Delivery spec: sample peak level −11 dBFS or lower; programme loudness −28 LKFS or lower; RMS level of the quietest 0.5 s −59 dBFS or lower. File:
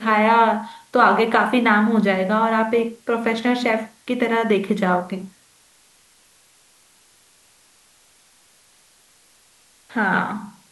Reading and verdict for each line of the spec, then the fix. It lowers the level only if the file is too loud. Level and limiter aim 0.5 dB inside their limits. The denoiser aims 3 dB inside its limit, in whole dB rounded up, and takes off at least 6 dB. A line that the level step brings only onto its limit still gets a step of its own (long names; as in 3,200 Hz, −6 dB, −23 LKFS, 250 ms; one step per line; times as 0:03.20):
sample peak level −4.0 dBFS: out of spec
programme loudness −19.0 LKFS: out of spec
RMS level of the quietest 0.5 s −56 dBFS: out of spec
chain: level −9.5 dB